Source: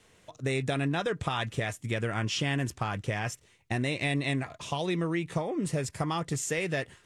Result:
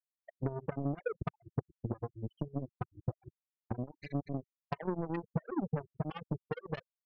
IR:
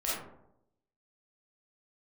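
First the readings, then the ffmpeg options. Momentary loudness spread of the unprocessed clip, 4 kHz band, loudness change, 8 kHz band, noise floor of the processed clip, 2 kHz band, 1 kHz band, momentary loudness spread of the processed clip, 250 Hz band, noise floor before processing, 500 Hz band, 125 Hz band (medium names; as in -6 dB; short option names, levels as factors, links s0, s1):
5 LU, under -20 dB, -8.5 dB, under -40 dB, under -85 dBFS, -18.5 dB, -10.0 dB, 6 LU, -6.5 dB, -62 dBFS, -8.0 dB, -7.0 dB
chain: -af "acompressor=threshold=0.00562:ratio=3,afftfilt=real='re*gte(hypot(re,im),0.0398)':imag='im*gte(hypot(re,im),0.0398)':win_size=1024:overlap=0.75,aeval=exprs='0.0251*(cos(1*acos(clip(val(0)/0.0251,-1,1)))-cos(1*PI/2))+0.00398*(cos(3*acos(clip(val(0)/0.0251,-1,1)))-cos(3*PI/2))+0.00224*(cos(7*acos(clip(val(0)/0.0251,-1,1)))-cos(7*PI/2))':c=same,volume=4.73"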